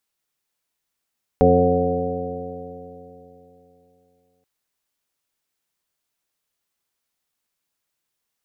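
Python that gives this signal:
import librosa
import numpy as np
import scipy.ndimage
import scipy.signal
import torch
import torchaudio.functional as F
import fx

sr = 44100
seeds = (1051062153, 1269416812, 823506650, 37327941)

y = fx.additive_stiff(sr, length_s=3.03, hz=86.6, level_db=-20.5, upper_db=(1.5, 2.0, -8.0, 6.0, 5.0, -13.5, 1.5), decay_s=3.27, stiffness=0.0021)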